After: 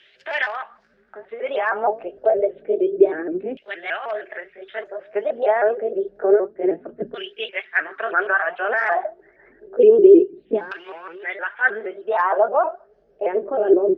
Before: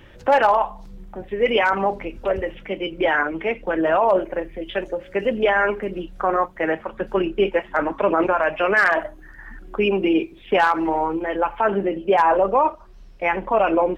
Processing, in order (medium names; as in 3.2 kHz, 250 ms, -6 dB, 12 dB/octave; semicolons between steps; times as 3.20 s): sawtooth pitch modulation +3.5 st, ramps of 156 ms; LFO band-pass saw down 0.28 Hz 230–3200 Hz; graphic EQ with 31 bands 160 Hz +5 dB, 400 Hz +12 dB, 630 Hz +6 dB, 1 kHz -9 dB, 1.6 kHz +8 dB, 5 kHz +7 dB; trim +3 dB